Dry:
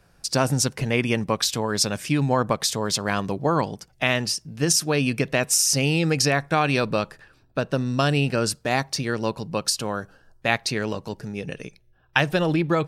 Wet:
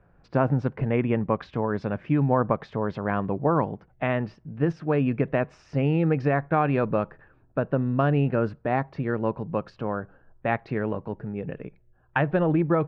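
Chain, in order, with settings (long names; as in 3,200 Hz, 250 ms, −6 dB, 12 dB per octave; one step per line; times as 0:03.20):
Bessel low-pass filter 1,300 Hz, order 4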